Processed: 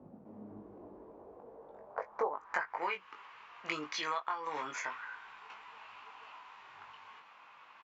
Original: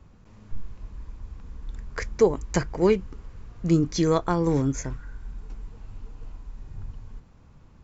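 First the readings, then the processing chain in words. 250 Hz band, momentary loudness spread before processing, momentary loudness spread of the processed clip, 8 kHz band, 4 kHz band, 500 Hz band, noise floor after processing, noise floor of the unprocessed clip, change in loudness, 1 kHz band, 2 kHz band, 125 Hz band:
-24.5 dB, 21 LU, 18 LU, no reading, -4.5 dB, -17.5 dB, -58 dBFS, -53 dBFS, -15.0 dB, -3.5 dB, 0.0 dB, -33.0 dB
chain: gain riding 0.5 s; high-pass sweep 220 Hz -> 990 Hz, 0.10–2.82 s; compression 6:1, threshold -36 dBFS, peak gain reduction 16.5 dB; treble shelf 3.8 kHz +7.5 dB; doubling 20 ms -5 dB; low-pass sweep 700 Hz -> 2.7 kHz, 1.83–2.99 s

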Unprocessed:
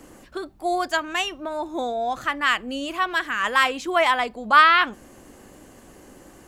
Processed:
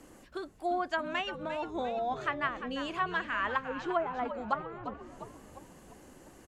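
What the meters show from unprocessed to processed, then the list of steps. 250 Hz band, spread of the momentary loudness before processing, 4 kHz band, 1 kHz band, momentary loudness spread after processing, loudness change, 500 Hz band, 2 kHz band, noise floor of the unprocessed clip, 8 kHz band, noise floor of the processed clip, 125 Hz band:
-7.0 dB, 14 LU, -16.0 dB, -12.5 dB, 20 LU, -12.5 dB, -7.5 dB, -14.0 dB, -49 dBFS, under -15 dB, -56 dBFS, no reading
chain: low-pass that closes with the level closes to 310 Hz, closed at -13.5 dBFS; frequency-shifting echo 348 ms, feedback 54%, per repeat -98 Hz, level -10 dB; trim -7.5 dB

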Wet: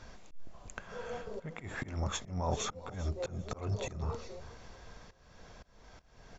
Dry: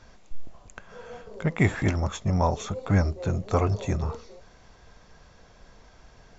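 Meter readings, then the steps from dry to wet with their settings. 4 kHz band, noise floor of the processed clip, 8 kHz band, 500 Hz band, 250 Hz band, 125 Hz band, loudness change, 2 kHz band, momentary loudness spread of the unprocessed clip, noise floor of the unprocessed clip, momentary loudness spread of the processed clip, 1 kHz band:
-2.0 dB, -61 dBFS, no reading, -9.5 dB, -15.0 dB, -12.5 dB, -12.5 dB, -11.0 dB, 19 LU, -54 dBFS, 21 LU, -10.0 dB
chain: peak limiter -20.5 dBFS, peak gain reduction 11.5 dB; slow attack 375 ms; feedback delay 396 ms, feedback 27%, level -17 dB; trim +1 dB

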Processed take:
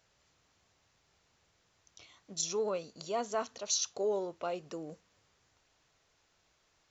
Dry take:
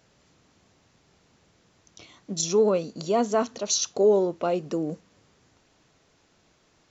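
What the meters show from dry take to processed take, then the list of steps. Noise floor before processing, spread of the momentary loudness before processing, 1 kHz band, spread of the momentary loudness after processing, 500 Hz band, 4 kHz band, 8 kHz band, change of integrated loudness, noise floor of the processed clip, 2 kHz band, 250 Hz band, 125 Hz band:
-64 dBFS, 10 LU, -9.0 dB, 12 LU, -12.0 dB, -6.5 dB, no reading, -10.5 dB, -73 dBFS, -7.0 dB, -16.0 dB, -16.0 dB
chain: peaking EQ 230 Hz -11 dB 2.1 oct; trim -6.5 dB

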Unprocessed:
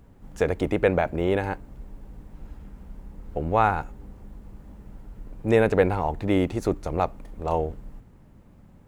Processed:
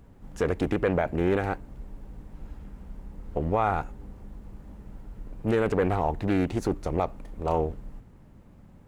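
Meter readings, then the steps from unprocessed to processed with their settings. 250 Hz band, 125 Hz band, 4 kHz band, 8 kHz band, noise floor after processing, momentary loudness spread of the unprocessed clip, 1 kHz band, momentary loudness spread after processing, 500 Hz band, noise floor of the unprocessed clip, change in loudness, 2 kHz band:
-1.5 dB, -1.5 dB, -4.0 dB, no reading, -52 dBFS, 14 LU, -3.0 dB, 21 LU, -3.5 dB, -52 dBFS, -2.5 dB, -4.0 dB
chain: peak limiter -14 dBFS, peak gain reduction 7 dB; loudspeaker Doppler distortion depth 0.4 ms

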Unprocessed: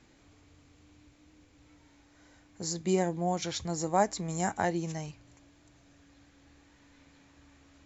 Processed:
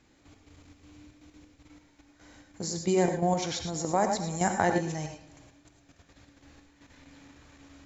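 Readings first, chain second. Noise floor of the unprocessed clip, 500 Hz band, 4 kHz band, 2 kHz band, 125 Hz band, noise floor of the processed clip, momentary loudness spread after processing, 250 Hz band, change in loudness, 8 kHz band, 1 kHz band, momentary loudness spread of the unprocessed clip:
-62 dBFS, +3.0 dB, +2.5 dB, +4.0 dB, +2.5 dB, -63 dBFS, 10 LU, +2.5 dB, +3.0 dB, no reading, +2.5 dB, 10 LU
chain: bucket-brigade echo 114 ms, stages 4096, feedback 48%, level -16 dB; level held to a coarse grid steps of 10 dB; gated-style reverb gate 130 ms rising, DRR 6 dB; trim +6 dB

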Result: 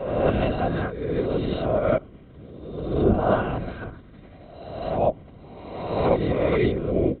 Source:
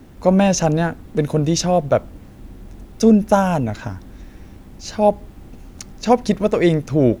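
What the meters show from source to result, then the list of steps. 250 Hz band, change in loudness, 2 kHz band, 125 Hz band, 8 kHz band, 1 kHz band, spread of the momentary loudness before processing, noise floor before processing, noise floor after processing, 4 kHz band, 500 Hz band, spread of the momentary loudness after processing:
-8.5 dB, -6.5 dB, -4.5 dB, -6.0 dB, under -40 dB, -6.5 dB, 16 LU, -42 dBFS, -47 dBFS, -10.0 dB, -4.5 dB, 17 LU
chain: reverse spectral sustain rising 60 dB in 1.24 s; LPC vocoder at 8 kHz whisper; comb of notches 870 Hz; trim -7 dB

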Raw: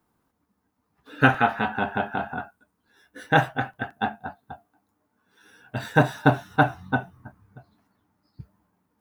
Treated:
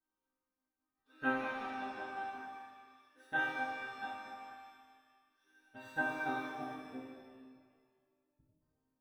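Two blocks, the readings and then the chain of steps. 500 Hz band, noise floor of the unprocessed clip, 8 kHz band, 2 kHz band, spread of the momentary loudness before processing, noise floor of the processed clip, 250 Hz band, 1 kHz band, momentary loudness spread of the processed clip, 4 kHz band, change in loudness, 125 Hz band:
-17.5 dB, -75 dBFS, under -10 dB, -12.5 dB, 16 LU, under -85 dBFS, -17.0 dB, -15.0 dB, 20 LU, -16.0 dB, -15.0 dB, -31.5 dB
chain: chord resonator C4 minor, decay 0.79 s; spectral selection erased 6.48–8.61 s, 770–7200 Hz; pitch-shifted reverb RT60 1.6 s, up +7 st, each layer -8 dB, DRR 0 dB; trim +3 dB

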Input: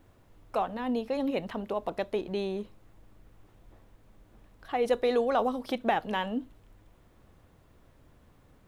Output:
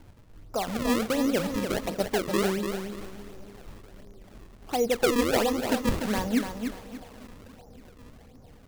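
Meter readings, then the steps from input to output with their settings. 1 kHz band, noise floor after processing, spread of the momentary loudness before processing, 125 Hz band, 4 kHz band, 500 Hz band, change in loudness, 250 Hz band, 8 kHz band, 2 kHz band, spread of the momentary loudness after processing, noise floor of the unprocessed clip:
-0.5 dB, -52 dBFS, 9 LU, +9.5 dB, +7.5 dB, +2.0 dB, +3.5 dB, +6.5 dB, no reading, +5.5 dB, 19 LU, -61 dBFS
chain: in parallel at -2 dB: peak limiter -22 dBFS, peak gain reduction 8 dB; on the sum: bass shelf 450 Hz +8.5 dB; tremolo saw down 3 Hz, depth 40%; low-pass 1.8 kHz 6 dB/octave; on a send: bucket-brigade echo 283 ms, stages 2048, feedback 81%, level -22 dB; on the sum: decimation with a swept rate 34×, swing 160% 1.4 Hz; bit-crushed delay 293 ms, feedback 35%, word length 7-bit, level -6.5 dB; trim -3.5 dB

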